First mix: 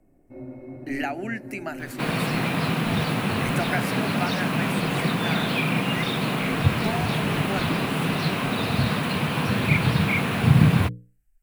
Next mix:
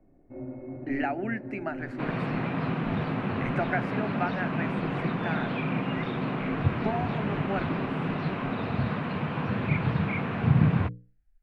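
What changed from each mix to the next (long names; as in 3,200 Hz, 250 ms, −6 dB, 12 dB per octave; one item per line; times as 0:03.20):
second sound −5.0 dB
master: add low-pass filter 1,900 Hz 12 dB per octave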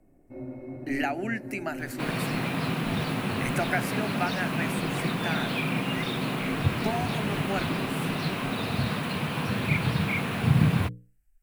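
master: remove low-pass filter 1,900 Hz 12 dB per octave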